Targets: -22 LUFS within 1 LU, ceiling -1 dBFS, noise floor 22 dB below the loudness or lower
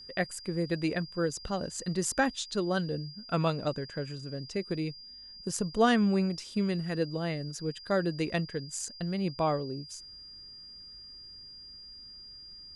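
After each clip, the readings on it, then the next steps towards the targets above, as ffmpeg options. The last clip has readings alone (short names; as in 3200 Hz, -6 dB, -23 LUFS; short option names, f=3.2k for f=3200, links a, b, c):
steady tone 4800 Hz; tone level -46 dBFS; loudness -31.5 LUFS; peak -13.0 dBFS; loudness target -22.0 LUFS
-> -af "bandreject=f=4.8k:w=30"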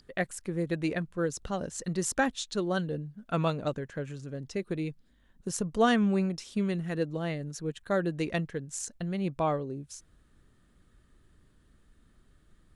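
steady tone none; loudness -31.5 LUFS; peak -13.0 dBFS; loudness target -22.0 LUFS
-> -af "volume=9.5dB"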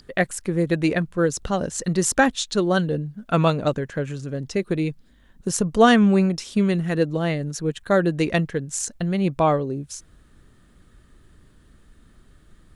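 loudness -22.0 LUFS; peak -3.5 dBFS; noise floor -55 dBFS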